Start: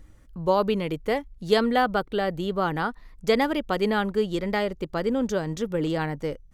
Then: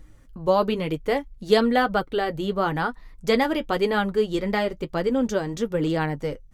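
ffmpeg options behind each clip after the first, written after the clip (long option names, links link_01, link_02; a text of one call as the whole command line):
ffmpeg -i in.wav -af "flanger=delay=6.2:depth=3:regen=-46:speed=1:shape=triangular,volume=5.5dB" out.wav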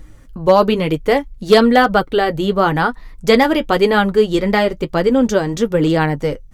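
ffmpeg -i in.wav -af "asoftclip=type=hard:threshold=-11.5dB,volume=9dB" out.wav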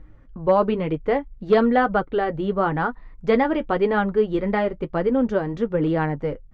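ffmpeg -i in.wav -af "lowpass=1900,volume=-6.5dB" out.wav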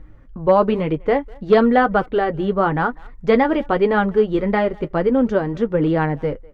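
ffmpeg -i in.wav -filter_complex "[0:a]asplit=2[link_01][link_02];[link_02]adelay=200,highpass=300,lowpass=3400,asoftclip=type=hard:threshold=-18dB,volume=-24dB[link_03];[link_01][link_03]amix=inputs=2:normalize=0,volume=3.5dB" out.wav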